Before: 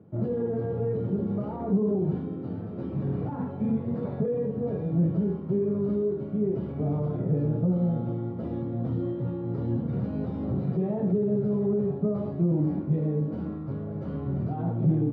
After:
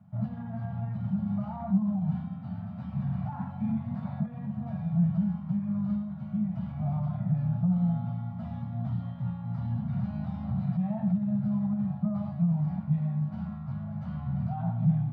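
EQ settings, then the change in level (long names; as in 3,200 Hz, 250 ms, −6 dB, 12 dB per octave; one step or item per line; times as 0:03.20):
Chebyshev band-stop filter 210–700 Hz, order 3
0.0 dB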